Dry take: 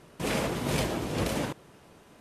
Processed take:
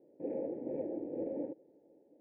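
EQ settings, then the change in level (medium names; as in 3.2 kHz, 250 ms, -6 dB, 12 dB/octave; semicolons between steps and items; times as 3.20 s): cascade formant filter u; vowel filter e; +16.0 dB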